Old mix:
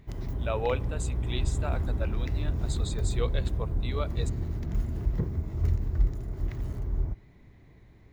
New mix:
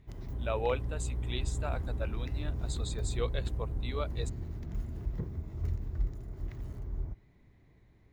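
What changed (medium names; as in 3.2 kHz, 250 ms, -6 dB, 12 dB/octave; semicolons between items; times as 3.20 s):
background -7.5 dB; reverb: off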